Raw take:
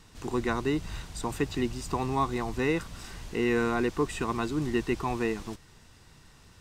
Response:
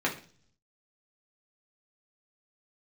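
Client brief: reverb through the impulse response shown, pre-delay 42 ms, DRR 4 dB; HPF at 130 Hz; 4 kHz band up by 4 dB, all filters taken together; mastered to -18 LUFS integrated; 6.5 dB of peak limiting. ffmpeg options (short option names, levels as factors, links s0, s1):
-filter_complex "[0:a]highpass=130,equalizer=f=4000:t=o:g=5,alimiter=limit=0.0891:level=0:latency=1,asplit=2[s0][s1];[1:a]atrim=start_sample=2205,adelay=42[s2];[s1][s2]afir=irnorm=-1:irlink=0,volume=0.2[s3];[s0][s3]amix=inputs=2:normalize=0,volume=4.47"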